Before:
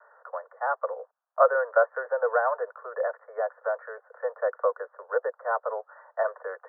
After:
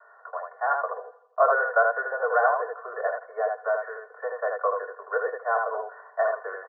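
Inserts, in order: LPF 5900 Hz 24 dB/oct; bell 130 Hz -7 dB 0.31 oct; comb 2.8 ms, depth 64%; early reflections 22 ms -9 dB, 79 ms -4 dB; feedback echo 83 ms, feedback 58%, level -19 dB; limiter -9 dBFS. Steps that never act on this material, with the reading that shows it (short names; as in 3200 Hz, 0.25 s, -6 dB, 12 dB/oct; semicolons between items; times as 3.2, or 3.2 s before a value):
LPF 5900 Hz: input band ends at 1900 Hz; bell 130 Hz: input band starts at 380 Hz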